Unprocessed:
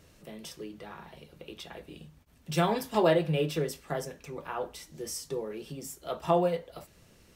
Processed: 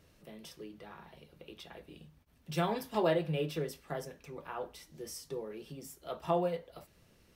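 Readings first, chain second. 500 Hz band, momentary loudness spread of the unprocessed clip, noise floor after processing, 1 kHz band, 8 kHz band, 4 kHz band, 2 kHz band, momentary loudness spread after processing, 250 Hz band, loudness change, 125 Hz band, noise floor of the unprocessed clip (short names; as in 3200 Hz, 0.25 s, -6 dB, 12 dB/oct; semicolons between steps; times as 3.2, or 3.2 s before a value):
-5.5 dB, 22 LU, -66 dBFS, -5.5 dB, -8.0 dB, -6.0 dB, -5.5 dB, 22 LU, -5.5 dB, -5.5 dB, -5.5 dB, -60 dBFS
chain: bell 7400 Hz -4.5 dB 0.59 oct; gain -5.5 dB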